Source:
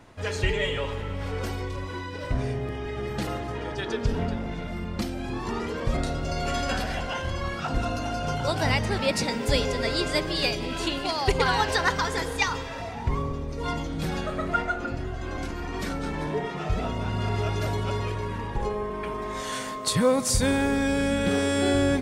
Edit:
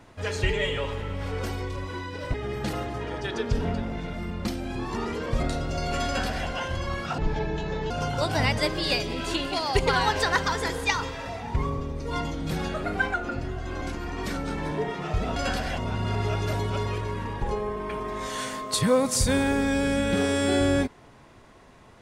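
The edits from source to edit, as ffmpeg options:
-filter_complex "[0:a]asplit=9[a][b][c][d][e][f][g][h][i];[a]atrim=end=2.342[j];[b]atrim=start=2.878:end=7.724[k];[c]atrim=start=7.72:end=8.17,asetpts=PTS-STARTPTS,asetrate=27342,aresample=44100,atrim=end_sample=32008,asetpts=PTS-STARTPTS[l];[d]atrim=start=8.166:end=8.852[m];[e]atrim=start=10.108:end=14.364[n];[f]atrim=start=14.36:end=14.7,asetpts=PTS-STARTPTS,asetrate=48951,aresample=44100,atrim=end_sample=13508,asetpts=PTS-STARTPTS[o];[g]atrim=start=14.696:end=16.922[p];[h]atrim=start=6.598:end=7.022[q];[i]atrim=start=16.918[r];[j][k]acrossfade=d=0.004:c1=hsin:c2=hsin[s];[s][l]acrossfade=d=0.004:c1=hsin:c2=hsin[t];[t][m]acrossfade=d=0.004:c1=hsin:c2=hsin[u];[u][n]acrossfade=d=0.004:c1=hsin:c2=hsin[v];[v][o]acrossfade=d=0.004:c1=hsin:c2=hsin[w];[w][p]acrossfade=d=0.004:c1=hsin:c2=hsin[x];[x][q]acrossfade=d=0.004:c1=hsin:c2=hsin[y];[y][r]acrossfade=d=0.004:c1=hsin:c2=hsin"

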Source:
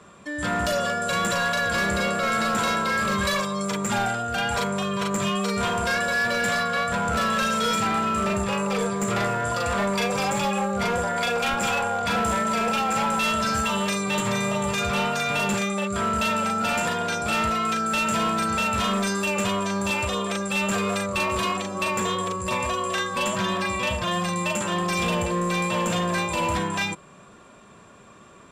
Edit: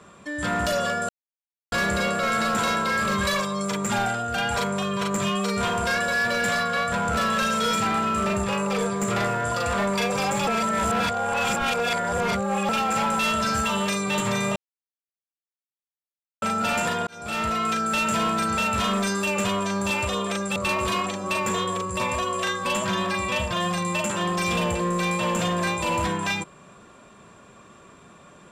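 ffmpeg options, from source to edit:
-filter_complex "[0:a]asplit=9[a][b][c][d][e][f][g][h][i];[a]atrim=end=1.09,asetpts=PTS-STARTPTS,afade=t=out:st=1.086:d=0.004:c=hsin[j];[b]atrim=start=1.09:end=1.72,asetpts=PTS-STARTPTS,volume=0[k];[c]atrim=start=1.72:end=10.472,asetpts=PTS-STARTPTS,afade=t=in:d=0.004:c=hsin[l];[d]atrim=start=10.468:end=12.692,asetpts=PTS-STARTPTS,areverse[m];[e]atrim=start=12.688:end=14.56,asetpts=PTS-STARTPTS,afade=t=out:st=1.868:d=0.004:c=hsin[n];[f]atrim=start=14.56:end=16.42,asetpts=PTS-STARTPTS,volume=0[o];[g]atrim=start=16.42:end=17.07,asetpts=PTS-STARTPTS,afade=t=in:d=0.004:c=hsin,afade=t=out:st=0.646:d=0.004:c=hsin[p];[h]atrim=start=17.07:end=20.562,asetpts=PTS-STARTPTS,afade=t=in:d=0.66:c=qsin[q];[i]atrim=start=21.068[r];[j][k][l]concat=n=3:v=0:a=1[s];[s][m]acrossfade=d=0.004:c1=hsin:c2=hsin[t];[n][o][p][q]concat=n=4:v=0:a=1[u];[t][u]acrossfade=d=0.004:c1=hsin:c2=hsin[v];[v][r]acrossfade=d=0.004:c1=hsin:c2=hsin"

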